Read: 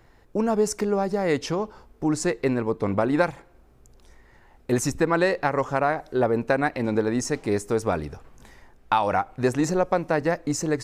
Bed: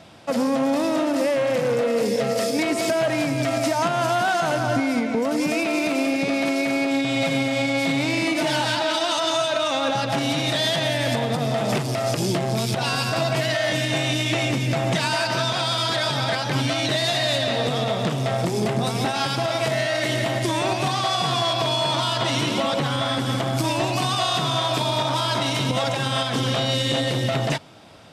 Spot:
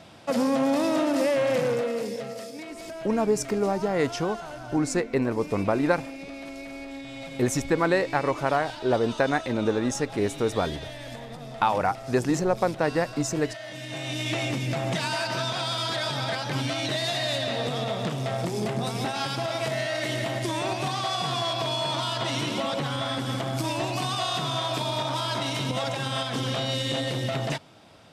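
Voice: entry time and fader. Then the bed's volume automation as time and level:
2.70 s, -1.5 dB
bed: 1.61 s -2 dB
2.53 s -16.5 dB
13.70 s -16.5 dB
14.28 s -5.5 dB

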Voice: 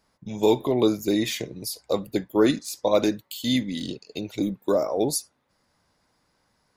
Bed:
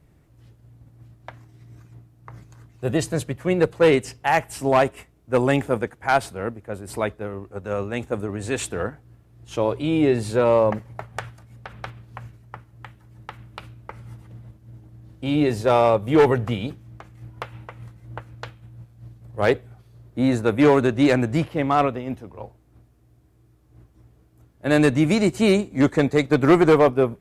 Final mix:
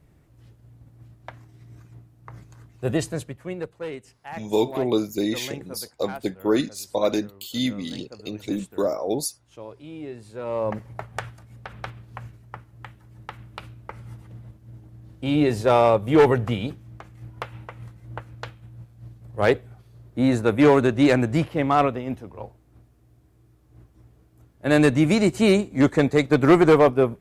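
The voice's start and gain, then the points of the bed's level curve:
4.10 s, -1.5 dB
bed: 2.91 s -0.5 dB
3.88 s -17.5 dB
10.32 s -17.5 dB
10.85 s 0 dB

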